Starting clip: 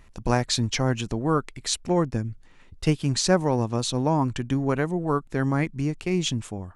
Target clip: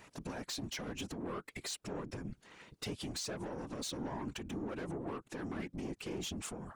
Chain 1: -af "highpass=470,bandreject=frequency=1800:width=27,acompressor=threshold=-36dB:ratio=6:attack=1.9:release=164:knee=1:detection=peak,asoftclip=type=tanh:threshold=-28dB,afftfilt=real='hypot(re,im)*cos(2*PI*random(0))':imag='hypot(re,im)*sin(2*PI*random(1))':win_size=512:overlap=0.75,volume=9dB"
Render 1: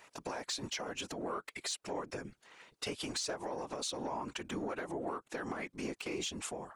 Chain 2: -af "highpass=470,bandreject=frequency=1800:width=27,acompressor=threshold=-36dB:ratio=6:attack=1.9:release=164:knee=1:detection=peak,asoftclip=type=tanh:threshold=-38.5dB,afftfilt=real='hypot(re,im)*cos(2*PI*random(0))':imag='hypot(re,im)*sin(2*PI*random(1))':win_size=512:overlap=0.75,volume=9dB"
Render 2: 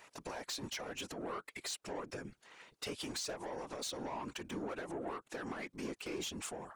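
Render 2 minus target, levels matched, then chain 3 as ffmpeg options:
250 Hz band −3.0 dB
-af "highpass=190,bandreject=frequency=1800:width=27,acompressor=threshold=-36dB:ratio=6:attack=1.9:release=164:knee=1:detection=peak,asoftclip=type=tanh:threshold=-38.5dB,afftfilt=real='hypot(re,im)*cos(2*PI*random(0))':imag='hypot(re,im)*sin(2*PI*random(1))':win_size=512:overlap=0.75,volume=9dB"

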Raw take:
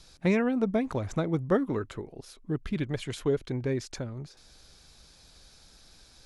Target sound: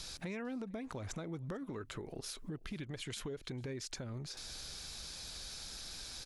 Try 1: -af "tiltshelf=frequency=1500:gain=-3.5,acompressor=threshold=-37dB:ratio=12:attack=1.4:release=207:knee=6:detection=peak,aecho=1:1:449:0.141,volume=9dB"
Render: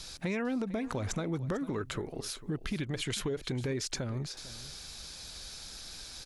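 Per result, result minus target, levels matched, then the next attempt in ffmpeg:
downward compressor: peak gain reduction −8.5 dB; echo-to-direct +9.5 dB
-af "tiltshelf=frequency=1500:gain=-3.5,acompressor=threshold=-46.5dB:ratio=12:attack=1.4:release=207:knee=6:detection=peak,aecho=1:1:449:0.141,volume=9dB"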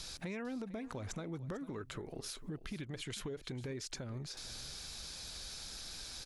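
echo-to-direct +9.5 dB
-af "tiltshelf=frequency=1500:gain=-3.5,acompressor=threshold=-46.5dB:ratio=12:attack=1.4:release=207:knee=6:detection=peak,aecho=1:1:449:0.0473,volume=9dB"

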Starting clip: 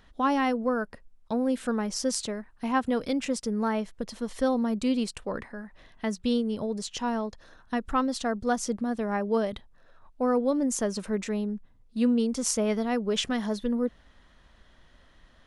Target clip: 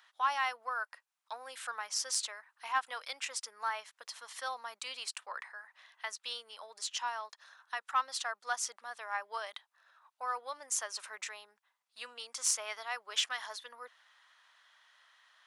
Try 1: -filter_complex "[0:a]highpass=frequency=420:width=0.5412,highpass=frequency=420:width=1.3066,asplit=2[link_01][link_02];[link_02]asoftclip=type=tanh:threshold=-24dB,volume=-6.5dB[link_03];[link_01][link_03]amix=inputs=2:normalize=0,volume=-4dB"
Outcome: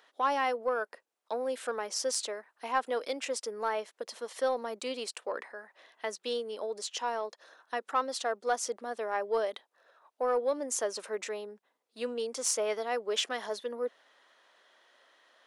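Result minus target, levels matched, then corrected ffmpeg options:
500 Hz band +14.5 dB
-filter_complex "[0:a]highpass=frequency=940:width=0.5412,highpass=frequency=940:width=1.3066,asplit=2[link_01][link_02];[link_02]asoftclip=type=tanh:threshold=-24dB,volume=-6.5dB[link_03];[link_01][link_03]amix=inputs=2:normalize=0,volume=-4dB"

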